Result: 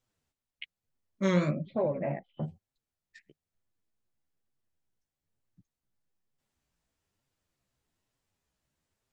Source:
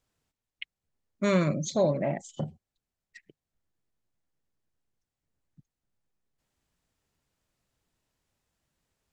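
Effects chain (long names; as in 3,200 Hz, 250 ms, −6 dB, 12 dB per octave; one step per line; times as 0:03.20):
0:01.50–0:02.43: elliptic low-pass filter 2,700 Hz, stop band 60 dB
flanger 1.1 Hz, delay 7.4 ms, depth 9.3 ms, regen +2%
wow of a warped record 33 1/3 rpm, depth 100 cents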